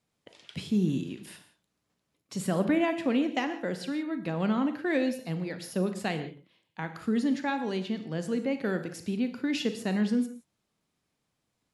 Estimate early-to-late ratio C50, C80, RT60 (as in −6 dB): 10.0 dB, 13.0 dB, non-exponential decay